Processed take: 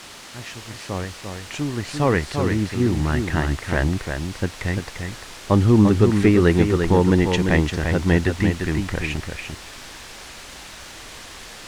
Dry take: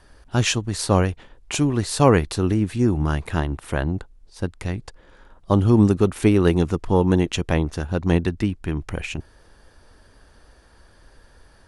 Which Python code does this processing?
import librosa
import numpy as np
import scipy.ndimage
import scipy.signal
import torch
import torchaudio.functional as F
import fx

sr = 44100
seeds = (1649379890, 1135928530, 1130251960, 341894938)

p1 = fx.fade_in_head(x, sr, length_s=3.85)
p2 = fx.peak_eq(p1, sr, hz=1900.0, db=10.0, octaves=0.37)
p3 = fx.quant_dither(p2, sr, seeds[0], bits=6, dither='triangular')
p4 = np.clip(10.0 ** (14.0 / 20.0) * p3, -1.0, 1.0) / 10.0 ** (14.0 / 20.0)
p5 = p3 + F.gain(torch.from_numpy(p4), -8.5).numpy()
p6 = fx.air_absorb(p5, sr, metres=75.0)
p7 = p6 + fx.echo_single(p6, sr, ms=345, db=-6.0, dry=0)
y = F.gain(torch.from_numpy(p7), -1.0).numpy()